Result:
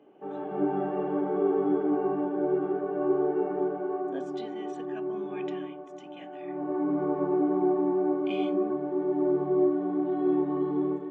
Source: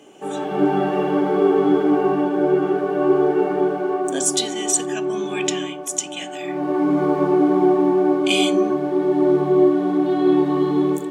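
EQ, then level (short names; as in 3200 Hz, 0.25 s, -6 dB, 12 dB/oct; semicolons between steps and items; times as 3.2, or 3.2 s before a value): tape spacing loss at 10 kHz 43 dB; low shelf 130 Hz -11.5 dB; high shelf 3900 Hz -10 dB; -6.0 dB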